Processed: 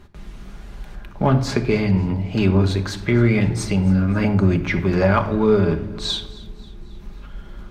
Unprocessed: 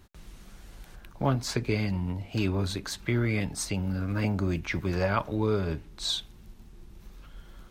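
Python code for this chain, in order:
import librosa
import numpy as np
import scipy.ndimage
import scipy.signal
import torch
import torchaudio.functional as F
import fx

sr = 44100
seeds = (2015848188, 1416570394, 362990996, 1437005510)

p1 = fx.lowpass(x, sr, hz=2600.0, slope=6)
p2 = np.clip(p1, -10.0 ** (-23.0 / 20.0), 10.0 ** (-23.0 / 20.0))
p3 = p1 + F.gain(torch.from_numpy(p2), -10.0).numpy()
p4 = fx.echo_feedback(p3, sr, ms=269, feedback_pct=50, wet_db=-21.0)
p5 = fx.room_shoebox(p4, sr, seeds[0], volume_m3=2600.0, walls='furnished', distance_m=1.3)
y = F.gain(torch.from_numpy(p5), 7.0).numpy()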